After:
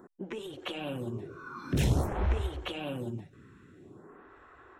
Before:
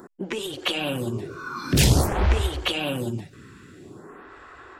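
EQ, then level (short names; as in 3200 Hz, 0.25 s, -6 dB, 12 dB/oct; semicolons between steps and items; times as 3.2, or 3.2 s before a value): high shelf 2600 Hz -10.5 dB; notch 4700 Hz, Q 5.7; -8.0 dB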